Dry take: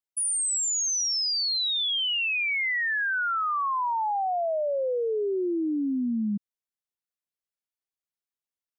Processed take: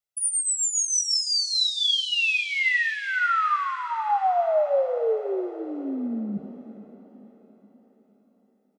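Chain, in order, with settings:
comb filter 1.5 ms, depth 59%
feedback delay with all-pass diffusion 500 ms, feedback 47%, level −14.5 dB
on a send at −5 dB: convolution reverb RT60 0.80 s, pre-delay 8 ms

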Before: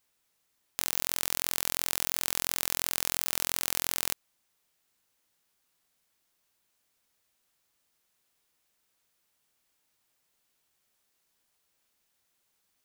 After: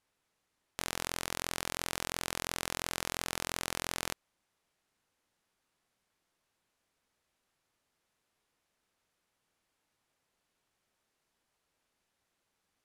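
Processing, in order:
elliptic low-pass filter 12,000 Hz, stop band 60 dB
high-shelf EQ 3,100 Hz −11.5 dB
level +3 dB

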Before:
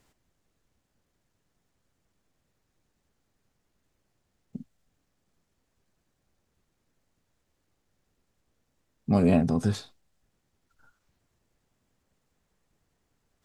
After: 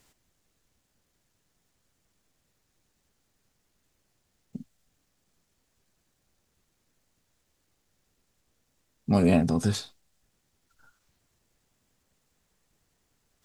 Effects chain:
high-shelf EQ 2,500 Hz +7.5 dB

